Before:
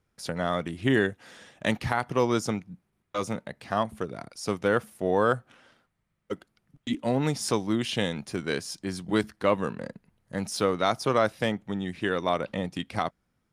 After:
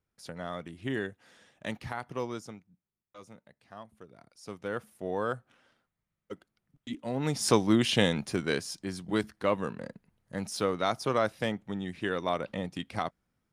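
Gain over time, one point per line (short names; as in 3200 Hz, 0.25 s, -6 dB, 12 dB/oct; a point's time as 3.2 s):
2.21 s -10 dB
2.71 s -20 dB
3.91 s -20 dB
4.92 s -8.5 dB
7.09 s -8.5 dB
7.51 s +3 dB
8.14 s +3 dB
8.93 s -4 dB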